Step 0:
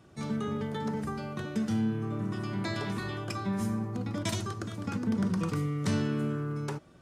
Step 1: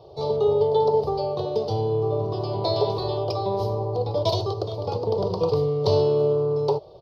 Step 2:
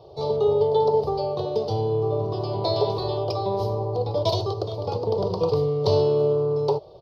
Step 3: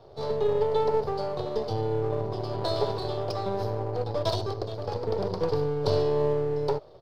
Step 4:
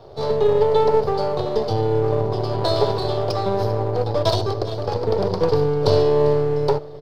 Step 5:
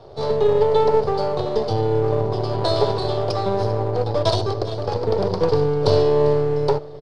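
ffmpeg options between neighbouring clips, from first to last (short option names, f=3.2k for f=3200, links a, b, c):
-af "firequalizer=gain_entry='entry(130,0);entry(230,-22);entry(420,13);entry(940,7);entry(1600,-29);entry(3100,-3);entry(4500,8);entry(7600,-30);entry(13000,-10)':delay=0.05:min_phase=1,volume=7dB"
-af anull
-af "aeval=exprs='if(lt(val(0),0),0.447*val(0),val(0))':c=same,volume=-2dB"
-af "aecho=1:1:397:0.126,volume=8dB"
-af "aresample=22050,aresample=44100"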